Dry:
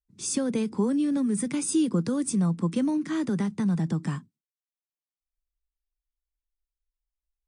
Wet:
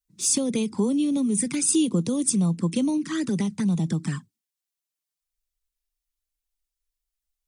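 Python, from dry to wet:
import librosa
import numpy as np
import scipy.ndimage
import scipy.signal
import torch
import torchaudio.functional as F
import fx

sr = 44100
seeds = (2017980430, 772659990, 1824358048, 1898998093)

y = fx.env_flanger(x, sr, rest_ms=6.5, full_db=-22.5)
y = fx.high_shelf(y, sr, hz=2600.0, db=10.5)
y = y * 10.0 ** (2.0 / 20.0)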